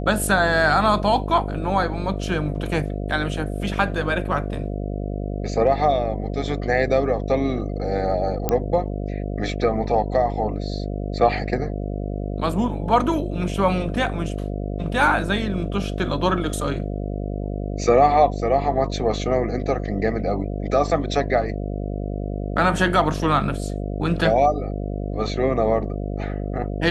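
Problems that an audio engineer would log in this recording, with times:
buzz 50 Hz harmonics 14 -27 dBFS
8.49 s: pop -7 dBFS

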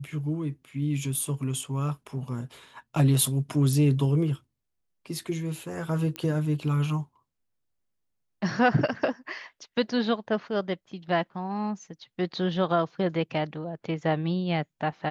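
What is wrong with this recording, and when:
6.16 s: pop -18 dBFS

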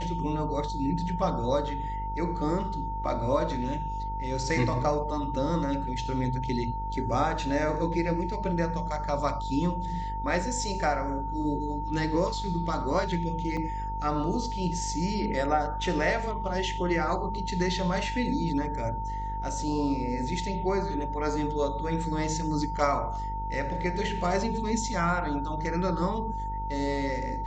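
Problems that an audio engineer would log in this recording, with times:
buzz 50 Hz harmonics 23 -35 dBFS
whine 900 Hz -33 dBFS
13.57 s: dropout 4.4 ms

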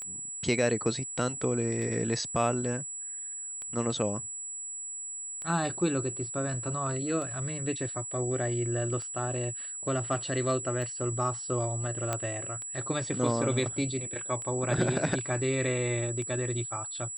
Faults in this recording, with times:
tick 33 1/3 rpm -27 dBFS
whine 7.8 kHz -36 dBFS
12.13 s: pop -15 dBFS

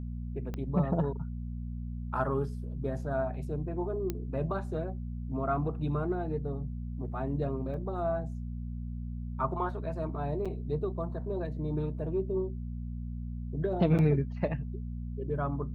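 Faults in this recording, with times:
hum 60 Hz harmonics 4 -37 dBFS
0.54 s: pop -24 dBFS
4.10 s: pop -18 dBFS
7.74 s: dropout 2.3 ms
10.45–10.46 s: dropout 5.9 ms
13.98–13.99 s: dropout 8.2 ms

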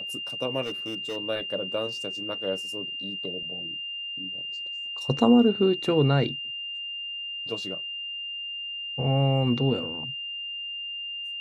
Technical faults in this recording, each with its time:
whine 2.8 kHz -32 dBFS
0.62–1.17 s: clipped -28 dBFS

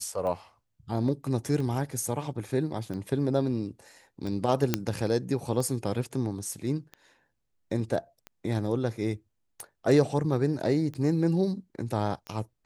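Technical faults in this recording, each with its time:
tick 45 rpm -25 dBFS
4.74 s: pop -8 dBFS

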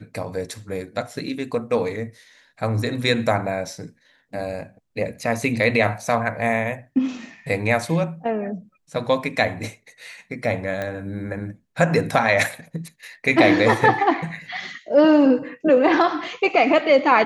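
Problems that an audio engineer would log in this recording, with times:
10.82 s: pop -15 dBFS

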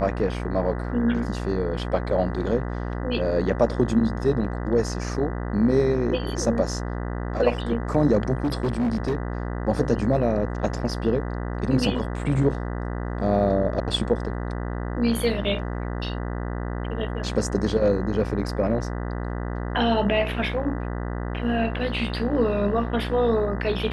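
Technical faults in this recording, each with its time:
buzz 60 Hz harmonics 33 -29 dBFS
8.44–9.18 s: clipped -19.5 dBFS

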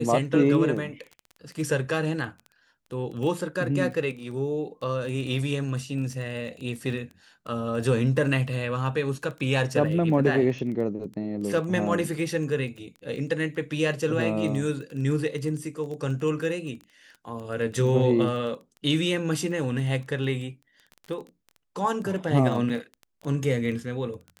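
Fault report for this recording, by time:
crackle 12 per s -33 dBFS

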